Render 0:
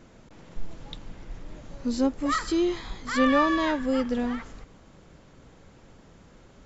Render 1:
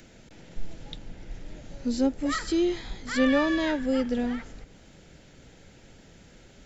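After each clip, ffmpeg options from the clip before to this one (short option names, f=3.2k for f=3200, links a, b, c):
-filter_complex "[0:a]equalizer=f=1.1k:t=o:w=0.36:g=-12.5,acrossover=split=330|780|1500[a][b][c][d];[d]acompressor=mode=upward:threshold=-53dB:ratio=2.5[e];[a][b][c][e]amix=inputs=4:normalize=0"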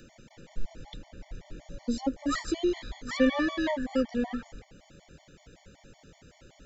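-af "equalizer=f=670:w=1.5:g=2.5,afftfilt=real='re*gt(sin(2*PI*5.3*pts/sr)*(1-2*mod(floor(b*sr/1024/590),2)),0)':imag='im*gt(sin(2*PI*5.3*pts/sr)*(1-2*mod(floor(b*sr/1024/590),2)),0)':win_size=1024:overlap=0.75"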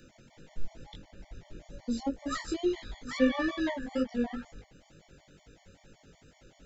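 -af "flanger=delay=19:depth=3.1:speed=2.2"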